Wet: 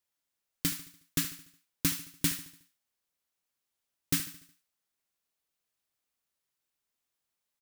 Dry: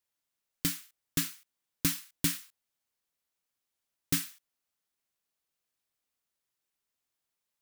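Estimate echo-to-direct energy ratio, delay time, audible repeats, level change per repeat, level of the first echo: −13.0 dB, 73 ms, 4, −6.5 dB, −14.0 dB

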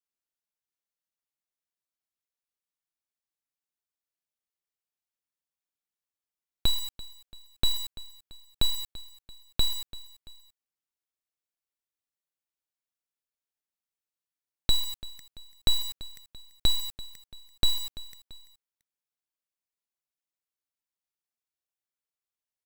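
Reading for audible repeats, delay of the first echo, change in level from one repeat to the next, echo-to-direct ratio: 2, 338 ms, −6.5 dB, −17.0 dB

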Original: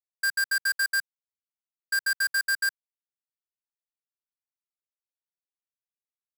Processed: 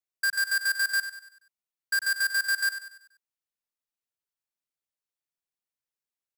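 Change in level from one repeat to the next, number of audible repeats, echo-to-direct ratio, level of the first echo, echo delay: −7.0 dB, 4, −10.0 dB, −11.0 dB, 96 ms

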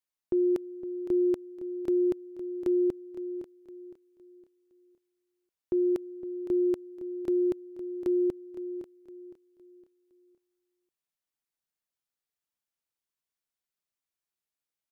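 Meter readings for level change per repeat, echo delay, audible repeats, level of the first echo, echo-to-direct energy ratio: −9.0 dB, 512 ms, 3, −13.0 dB, −12.5 dB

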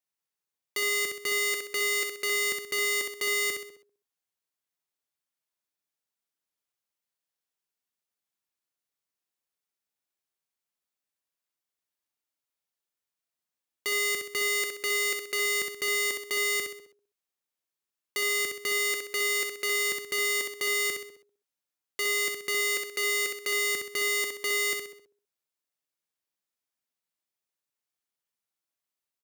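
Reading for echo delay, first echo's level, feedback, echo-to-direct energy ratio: 64 ms, −5.0 dB, 40%, −4.0 dB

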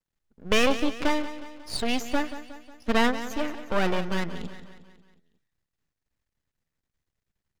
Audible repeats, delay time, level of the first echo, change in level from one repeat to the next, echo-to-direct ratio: 4, 181 ms, −13.0 dB, −5.5 dB, −11.5 dB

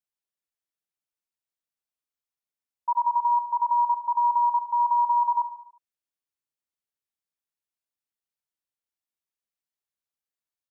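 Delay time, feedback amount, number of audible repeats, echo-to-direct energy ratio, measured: 72 ms, 53%, 5, −11.0 dB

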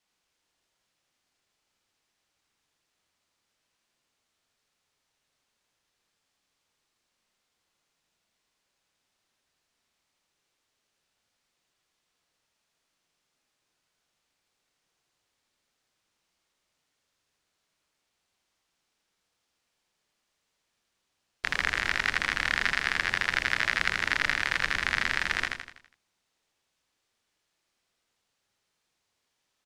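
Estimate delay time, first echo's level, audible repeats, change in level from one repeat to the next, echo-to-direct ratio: 82 ms, −4.0 dB, 5, −6.5 dB, −3.0 dB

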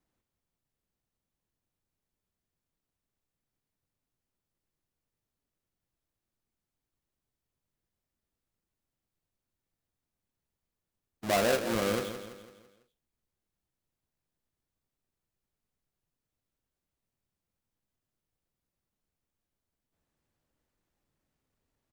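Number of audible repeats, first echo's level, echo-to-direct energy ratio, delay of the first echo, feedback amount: 4, −10.0 dB, −9.0 dB, 167 ms, 46%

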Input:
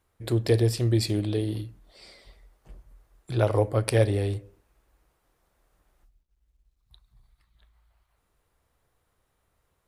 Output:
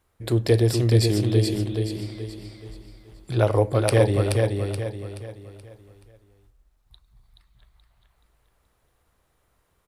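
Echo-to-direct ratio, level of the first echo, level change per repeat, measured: −3.5 dB, −4.0 dB, −8.0 dB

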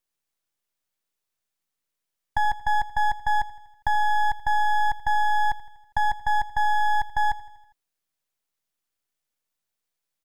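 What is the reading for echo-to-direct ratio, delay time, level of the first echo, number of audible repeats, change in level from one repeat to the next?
−16.0 dB, 81 ms, −18.0 dB, 4, −4.5 dB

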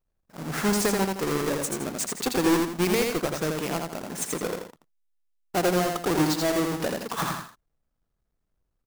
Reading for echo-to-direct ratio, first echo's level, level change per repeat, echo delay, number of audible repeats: −3.0 dB, −3.5 dB, −8.5 dB, 83 ms, 2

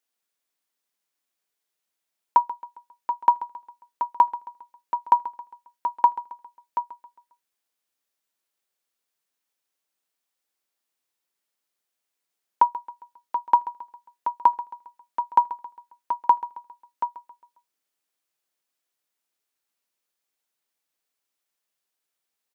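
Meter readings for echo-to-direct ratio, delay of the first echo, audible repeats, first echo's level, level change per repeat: −15.0 dB, 135 ms, 3, −16.0 dB, −7.0 dB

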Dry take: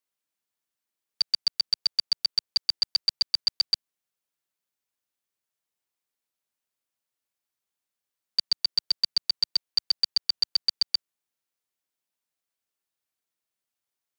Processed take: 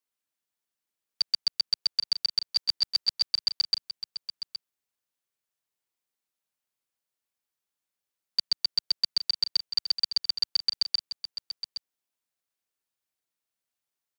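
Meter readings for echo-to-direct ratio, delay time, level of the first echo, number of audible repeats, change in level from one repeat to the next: −11.0 dB, 818 ms, −11.0 dB, 1, repeats not evenly spaced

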